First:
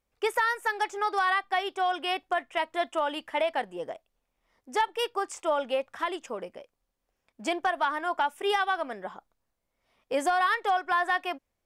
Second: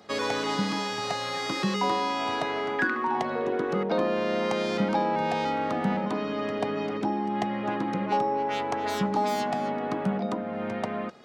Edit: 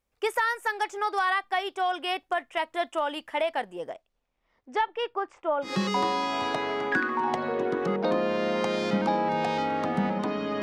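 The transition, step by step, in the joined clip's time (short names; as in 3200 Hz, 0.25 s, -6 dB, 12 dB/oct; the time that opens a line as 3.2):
first
3.93–5.77 LPF 7700 Hz -> 1300 Hz
5.69 switch to second from 1.56 s, crossfade 0.16 s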